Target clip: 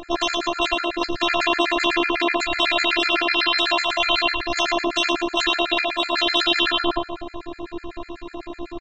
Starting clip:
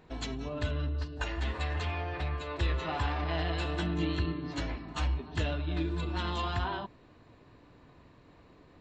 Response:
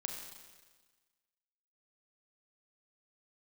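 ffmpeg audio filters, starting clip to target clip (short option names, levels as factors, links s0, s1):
-filter_complex "[0:a]asettb=1/sr,asplit=3[s0][s1][s2];[s0]atrim=end=1.444[s3];[s1]atrim=start=1.44:end=2.28,asetpts=PTS-STARTPTS,afade=t=in:d=0.004:c=qsin,afade=t=out:st=0.836:d=0.004:c=qsin,aeval=exprs='(tanh(25.1*val(0)+0.2)-tanh(0.2))/25.1':c=same[s4];[s2]atrim=start=2.276[s5];[s3][s4]acrossfade=d=0.004:c1=hsin:c2=qsin[s6];[s6][s5]acrossfade=d=0.004:c1=qsin:c2=hsin,aecho=1:1:107|214|321|428|535:0.335|0.144|0.0619|0.0266|0.0115,flanger=delay=18:depth=2.7:speed=0.34,asplit=2[s7][s8];[1:a]atrim=start_sample=2205,adelay=56[s9];[s8][s9]afir=irnorm=-1:irlink=0,volume=0.188[s10];[s7][s10]amix=inputs=2:normalize=0,afftfilt=real='re*lt(hypot(re,im),0.0282)':imag='im*lt(hypot(re,im),0.0282)':win_size=1024:overlap=0.75,afftfilt=real='hypot(re,im)*cos(PI*b)':imag='0':win_size=512:overlap=0.75,tremolo=f=70:d=0.621,lowpass=5800,aecho=1:1:6.1:0.48,alimiter=level_in=50.1:limit=0.891:release=50:level=0:latency=1,afftfilt=real='re*gt(sin(2*PI*8*pts/sr)*(1-2*mod(floor(b*sr/1024/1300),2)),0)':imag='im*gt(sin(2*PI*8*pts/sr)*(1-2*mod(floor(b*sr/1024/1300),2)),0)':win_size=1024:overlap=0.75"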